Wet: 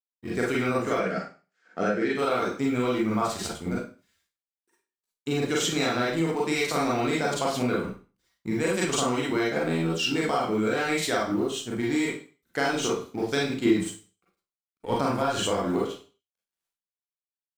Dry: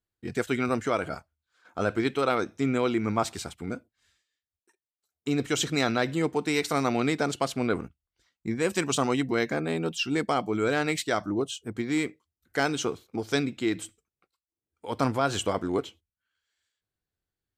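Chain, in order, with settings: companding laws mixed up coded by A; 0.94–2.14 s: cabinet simulation 170–7200 Hz, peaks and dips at 190 Hz +8 dB, 440 Hz +5 dB, 1 kHz -8 dB, 1.8 kHz +7 dB, 3.7 kHz -6 dB; Schroeder reverb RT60 0.35 s, combs from 33 ms, DRR -5.5 dB; compression, threshold -22 dBFS, peak gain reduction 8.5 dB; 13.65–14.96 s: bass shelf 410 Hz +8.5 dB

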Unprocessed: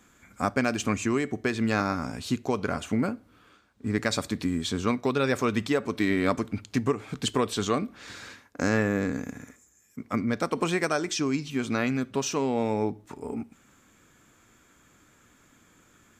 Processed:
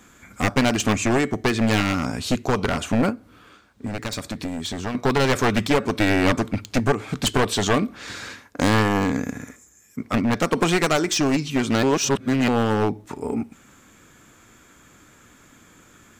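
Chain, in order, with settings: one-sided wavefolder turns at -24 dBFS; 3.10–4.95 s: compression 2.5:1, threshold -37 dBFS, peak gain reduction 10.5 dB; 11.83–12.48 s: reverse; trim +8 dB

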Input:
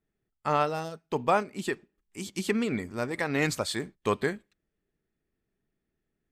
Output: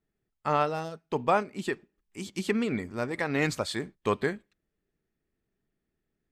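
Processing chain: treble shelf 7.1 kHz -7.5 dB

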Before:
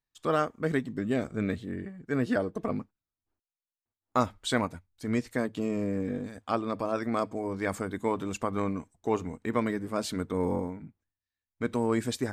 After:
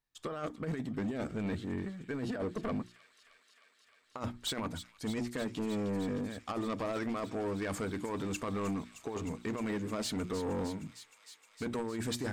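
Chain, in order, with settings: treble shelf 9.7 kHz -4 dB; hum notches 60/120/180/240/300/360 Hz; compressor with a negative ratio -30 dBFS, ratio -0.5; saturation -29.5 dBFS, distortion -10 dB; on a send: feedback echo behind a high-pass 309 ms, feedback 84%, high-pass 2.8 kHz, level -10 dB

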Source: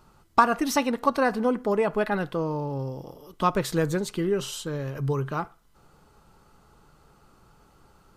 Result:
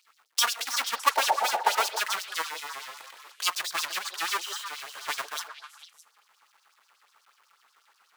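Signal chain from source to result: square wave that keeps the level; high-pass 91 Hz 6 dB/octave; in parallel at 0 dB: level held to a coarse grid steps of 23 dB; on the sum: painted sound noise, 1.15–1.90 s, 330–950 Hz -14 dBFS; LFO high-pass sine 8.2 Hz 990–5500 Hz; on a send: repeats whose band climbs or falls 153 ms, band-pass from 480 Hz, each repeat 1.4 oct, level -5 dB; on the sum: trim -8 dB

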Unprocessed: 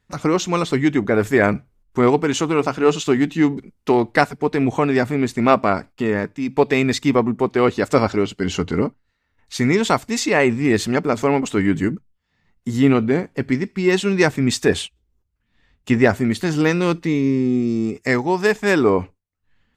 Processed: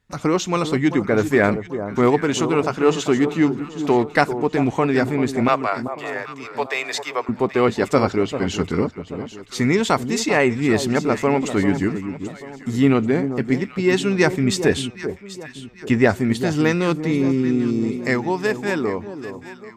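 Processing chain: fade out at the end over 1.86 s; 5.48–7.29 s: Bessel high-pass 740 Hz, order 8; echo whose repeats swap between lows and highs 393 ms, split 1.1 kHz, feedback 61%, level -9.5 dB; trim -1 dB

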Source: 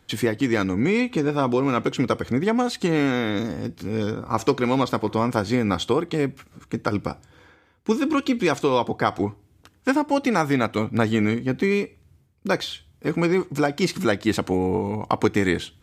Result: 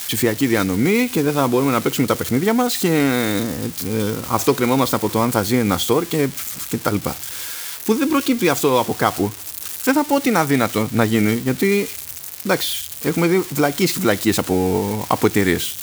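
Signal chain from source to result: zero-crossing glitches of -21 dBFS; trim +4 dB

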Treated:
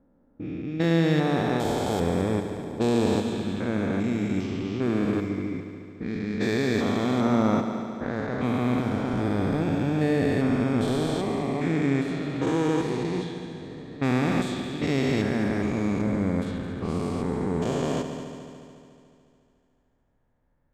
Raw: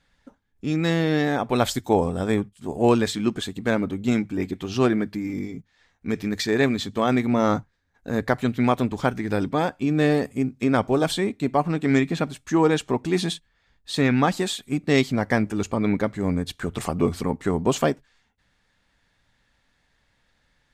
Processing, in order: spectrogram pixelated in time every 400 ms; 9.13–11.10 s: bass shelf 77 Hz +11 dB; level-controlled noise filter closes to 730 Hz, open at -22 dBFS; multi-head delay 72 ms, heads all three, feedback 67%, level -14.5 dB

